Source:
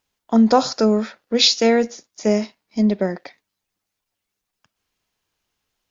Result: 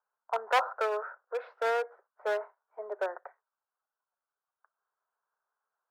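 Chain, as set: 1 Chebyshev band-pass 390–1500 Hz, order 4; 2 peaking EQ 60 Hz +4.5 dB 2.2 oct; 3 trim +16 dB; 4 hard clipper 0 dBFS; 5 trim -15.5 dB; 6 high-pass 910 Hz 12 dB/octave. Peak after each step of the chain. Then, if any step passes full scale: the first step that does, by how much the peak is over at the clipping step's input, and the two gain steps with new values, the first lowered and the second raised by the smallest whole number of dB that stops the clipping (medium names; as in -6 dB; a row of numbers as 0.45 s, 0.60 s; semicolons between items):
-6.0 dBFS, -6.0 dBFS, +10.0 dBFS, 0.0 dBFS, -15.5 dBFS, -12.5 dBFS; step 3, 10.0 dB; step 3 +6 dB, step 5 -5.5 dB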